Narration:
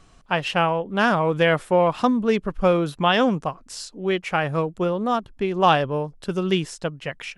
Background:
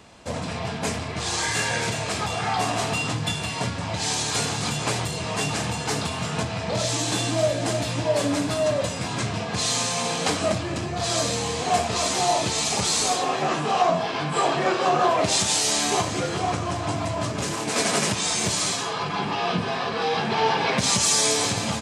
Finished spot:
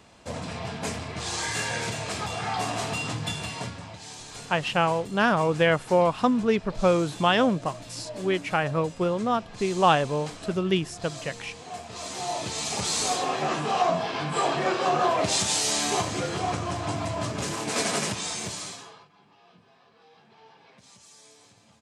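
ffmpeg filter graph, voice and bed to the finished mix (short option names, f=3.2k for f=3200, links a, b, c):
-filter_complex "[0:a]adelay=4200,volume=-2.5dB[a];[1:a]volume=9dB,afade=t=out:st=3.44:d=0.56:silence=0.251189,afade=t=in:st=11.82:d=1.34:silence=0.211349,afade=t=out:st=17.76:d=1.32:silence=0.0334965[b];[a][b]amix=inputs=2:normalize=0"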